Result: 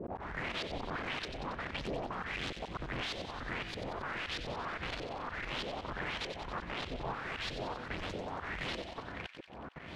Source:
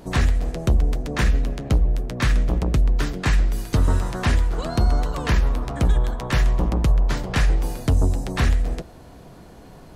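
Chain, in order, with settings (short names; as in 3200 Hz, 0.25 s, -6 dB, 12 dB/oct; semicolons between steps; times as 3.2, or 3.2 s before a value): spectral delay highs late, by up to 0.154 s; HPF 55 Hz 24 dB/oct; bell 1900 Hz +7.5 dB 0.84 oct; notches 60/120 Hz; level quantiser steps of 11 dB; auto swell 0.299 s; compressor 4:1, threshold -47 dBFS, peak gain reduction 19.5 dB; requantised 10-bit, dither none; wrapped overs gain 45 dB; LFO low-pass saw up 1.6 Hz 460–4200 Hz; thin delay 92 ms, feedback 68%, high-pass 2100 Hz, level -8 dB; gain +10 dB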